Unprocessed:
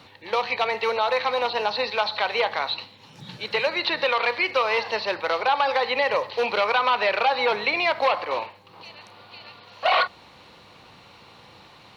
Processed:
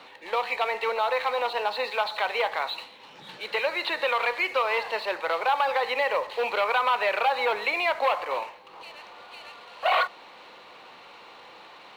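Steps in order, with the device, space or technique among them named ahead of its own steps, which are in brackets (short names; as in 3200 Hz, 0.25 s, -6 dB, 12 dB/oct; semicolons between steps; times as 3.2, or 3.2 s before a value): phone line with mismatched companding (BPF 400–3400 Hz; G.711 law mismatch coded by mu); gain -2.5 dB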